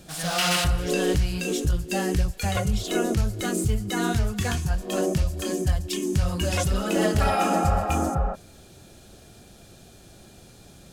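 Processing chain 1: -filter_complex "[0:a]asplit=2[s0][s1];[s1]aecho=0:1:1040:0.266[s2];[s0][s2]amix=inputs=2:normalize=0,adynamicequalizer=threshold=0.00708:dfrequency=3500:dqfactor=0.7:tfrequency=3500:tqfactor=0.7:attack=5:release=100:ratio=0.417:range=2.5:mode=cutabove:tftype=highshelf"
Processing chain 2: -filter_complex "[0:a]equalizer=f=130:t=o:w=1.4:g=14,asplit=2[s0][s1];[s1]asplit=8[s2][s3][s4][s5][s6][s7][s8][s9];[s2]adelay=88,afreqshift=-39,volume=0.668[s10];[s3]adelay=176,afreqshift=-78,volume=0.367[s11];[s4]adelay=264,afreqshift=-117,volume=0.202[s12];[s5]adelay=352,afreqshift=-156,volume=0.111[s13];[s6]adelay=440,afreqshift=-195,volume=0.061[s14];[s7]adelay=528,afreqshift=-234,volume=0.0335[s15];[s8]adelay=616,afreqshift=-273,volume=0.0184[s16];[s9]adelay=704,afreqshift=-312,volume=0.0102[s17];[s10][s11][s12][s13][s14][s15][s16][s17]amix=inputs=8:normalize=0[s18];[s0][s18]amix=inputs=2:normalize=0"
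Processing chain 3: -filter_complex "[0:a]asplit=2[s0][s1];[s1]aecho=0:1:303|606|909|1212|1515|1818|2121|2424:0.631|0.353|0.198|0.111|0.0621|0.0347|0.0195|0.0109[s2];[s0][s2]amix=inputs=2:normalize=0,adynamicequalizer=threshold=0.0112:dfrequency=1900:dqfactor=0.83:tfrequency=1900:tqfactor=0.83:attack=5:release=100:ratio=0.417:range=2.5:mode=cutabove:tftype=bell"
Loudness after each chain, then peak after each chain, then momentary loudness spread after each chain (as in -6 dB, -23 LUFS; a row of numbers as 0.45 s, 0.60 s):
-25.0 LUFS, -18.0 LUFS, -24.0 LUFS; -10.5 dBFS, -1.5 dBFS, -9.5 dBFS; 10 LU, 4 LU, 8 LU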